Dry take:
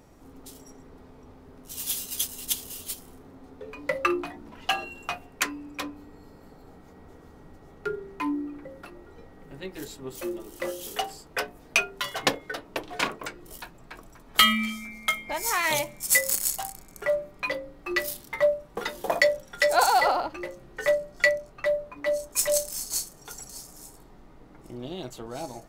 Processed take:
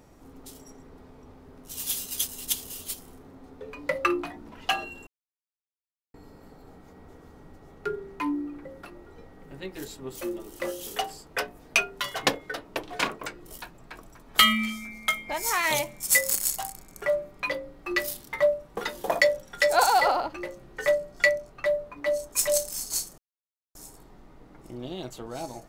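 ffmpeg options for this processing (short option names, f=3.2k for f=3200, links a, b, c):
-filter_complex "[0:a]asplit=5[a][b][c][d][e];[a]atrim=end=5.07,asetpts=PTS-STARTPTS,afade=t=out:st=5.066:d=0.004:c=hsin[f];[b]atrim=start=5.07:end=6.14,asetpts=PTS-STARTPTS,volume=0[g];[c]atrim=start=6.14:end=23.18,asetpts=PTS-STARTPTS,afade=t=in:d=0.004:c=hsin,afade=t=out:st=17.036:d=0.004:c=hsin[h];[d]atrim=start=23.18:end=23.75,asetpts=PTS-STARTPTS,volume=0[i];[e]atrim=start=23.75,asetpts=PTS-STARTPTS,afade=t=in:d=0.004:c=hsin[j];[f][g][h][i][j]concat=n=5:v=0:a=1"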